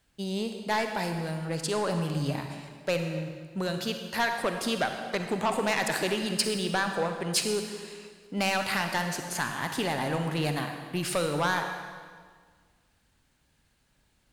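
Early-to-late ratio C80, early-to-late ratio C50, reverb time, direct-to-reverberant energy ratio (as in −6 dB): 6.5 dB, 5.5 dB, 1.7 s, 5.0 dB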